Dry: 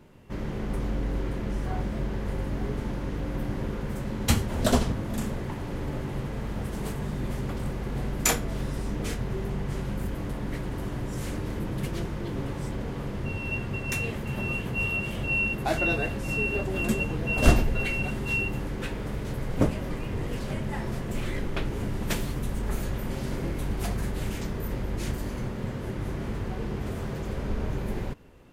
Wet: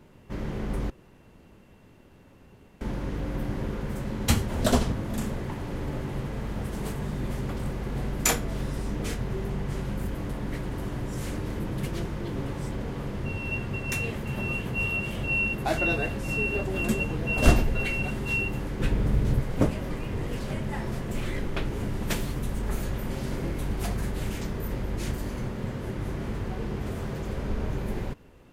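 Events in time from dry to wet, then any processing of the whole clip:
0.90–2.81 s: room tone
18.80–19.41 s: bass shelf 250 Hz +11 dB

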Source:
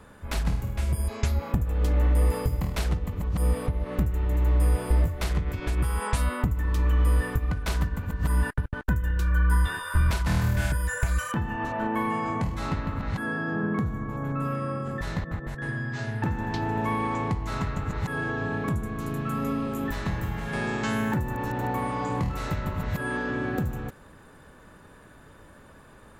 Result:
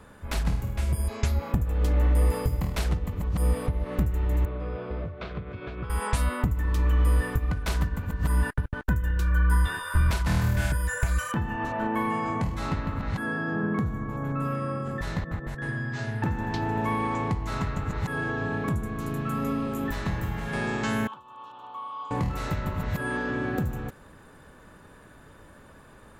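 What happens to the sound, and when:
4.45–5.90 s: cabinet simulation 130–3200 Hz, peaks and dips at 170 Hz -4 dB, 290 Hz -7 dB, 870 Hz -10 dB, 1.9 kHz -10 dB, 2.9 kHz -6 dB
21.07–22.11 s: two resonant band-passes 1.9 kHz, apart 1.5 oct

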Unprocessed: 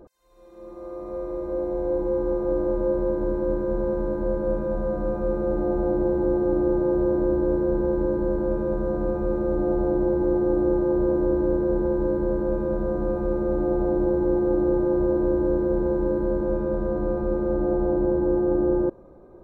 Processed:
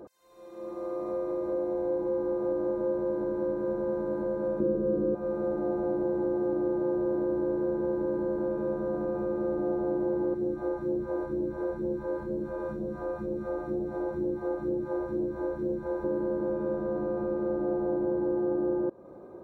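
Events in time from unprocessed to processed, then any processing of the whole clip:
4.60–5.15 s: resonant low shelf 560 Hz +9 dB, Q 3
10.34–16.04 s: phase shifter stages 2, 2.1 Hz, lowest notch 160–1300 Hz
whole clip: compression 2.5:1, threshold -32 dBFS; Bessel high-pass 160 Hz, order 2; trim +3 dB

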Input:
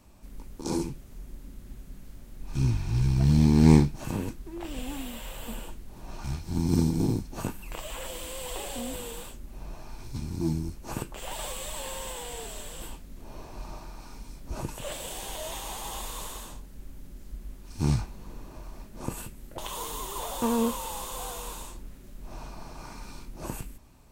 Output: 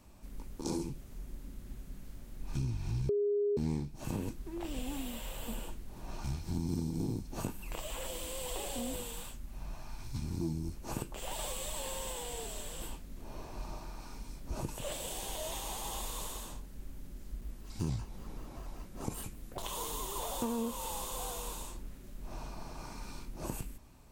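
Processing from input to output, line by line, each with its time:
3.09–3.57 s: bleep 410 Hz -11 dBFS
9.03–10.24 s: peaking EQ 410 Hz -7.5 dB 1.1 oct
17.41–19.63 s: vibrato with a chosen wave square 5.2 Hz, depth 160 cents
whole clip: dynamic bell 1.6 kHz, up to -4 dB, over -49 dBFS, Q 0.94; compression 6:1, threshold -29 dBFS; trim -2 dB

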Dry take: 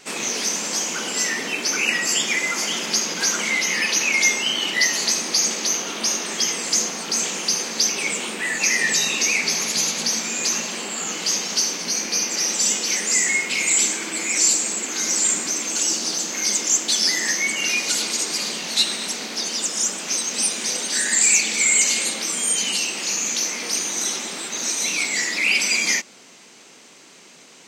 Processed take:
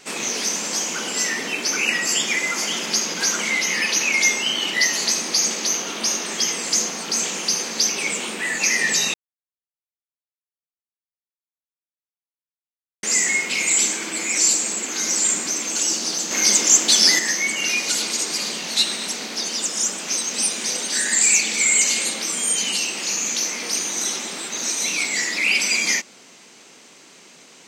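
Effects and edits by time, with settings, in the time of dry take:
9.14–13.03 s: mute
16.31–17.19 s: gain +5 dB

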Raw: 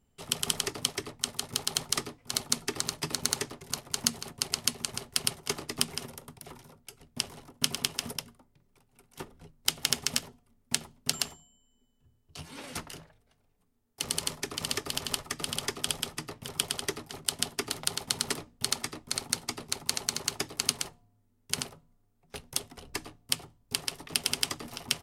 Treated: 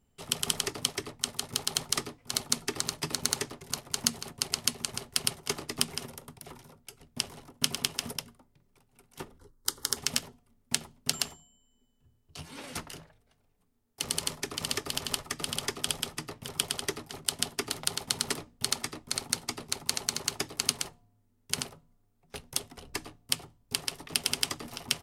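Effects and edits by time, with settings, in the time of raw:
9.38–9.97 s: static phaser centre 680 Hz, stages 6

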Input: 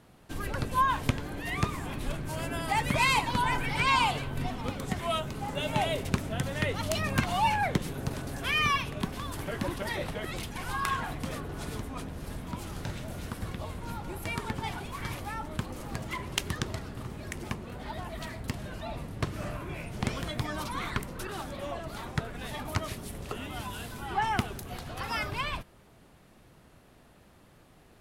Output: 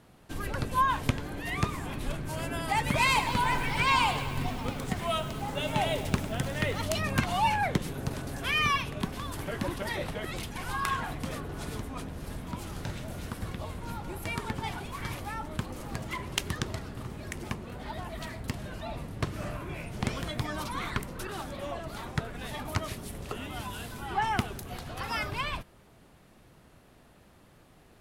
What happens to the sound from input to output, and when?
2.76–6.86 s: bit-crushed delay 102 ms, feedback 80%, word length 7-bit, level -13 dB

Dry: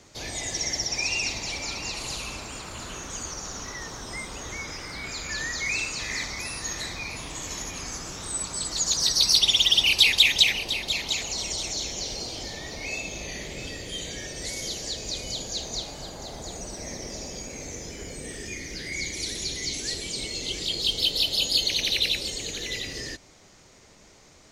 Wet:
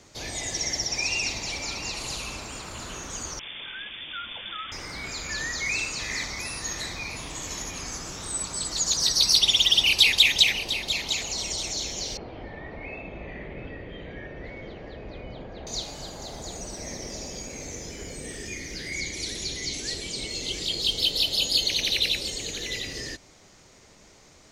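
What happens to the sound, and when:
3.39–4.72 s: frequency inversion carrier 3.5 kHz
12.17–15.67 s: low-pass 2.1 kHz 24 dB/octave
19.00–20.30 s: treble shelf 10 kHz -7 dB

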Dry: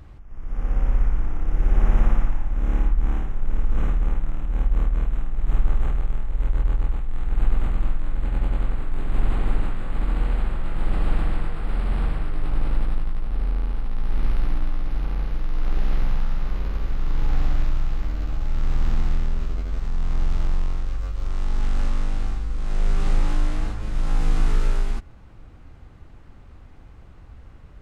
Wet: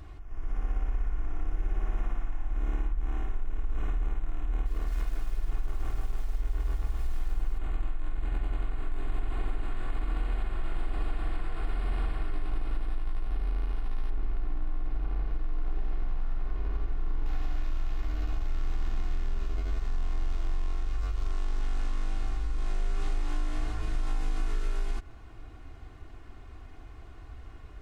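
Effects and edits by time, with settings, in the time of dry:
4.50–7.58 s: bit-crushed delay 157 ms, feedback 55%, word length 7-bit, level -7 dB
14.10–17.26 s: treble shelf 2.2 kHz -12 dB
whole clip: bass shelf 350 Hz -4 dB; compression, threshold -28 dBFS; comb 2.8 ms, depth 58%

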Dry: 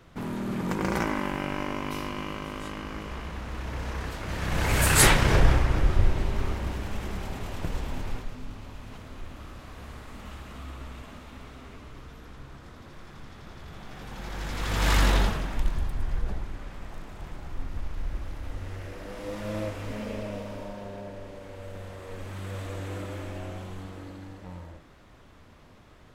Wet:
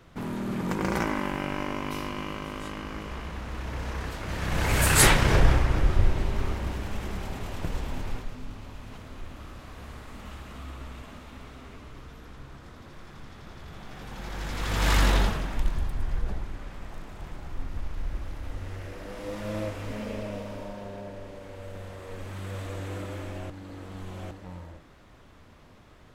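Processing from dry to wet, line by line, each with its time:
23.50–24.31 s: reverse

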